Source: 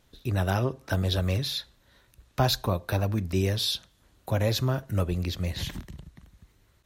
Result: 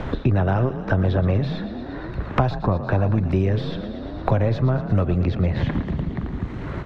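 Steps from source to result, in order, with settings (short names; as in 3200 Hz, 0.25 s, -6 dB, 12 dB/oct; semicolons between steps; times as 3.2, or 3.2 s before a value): half-wave gain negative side -3 dB; in parallel at -1.5 dB: limiter -22 dBFS, peak gain reduction 11 dB; on the sum: LPF 1500 Hz 12 dB/oct; on a send: frequency-shifting echo 0.115 s, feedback 55%, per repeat +36 Hz, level -13.5 dB; on the sum: three-band squash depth 100%; gain +4 dB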